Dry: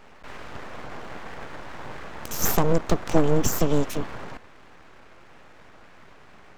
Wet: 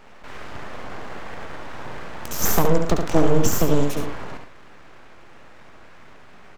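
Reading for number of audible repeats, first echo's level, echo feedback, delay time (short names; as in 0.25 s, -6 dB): 2, -5.5 dB, no steady repeat, 70 ms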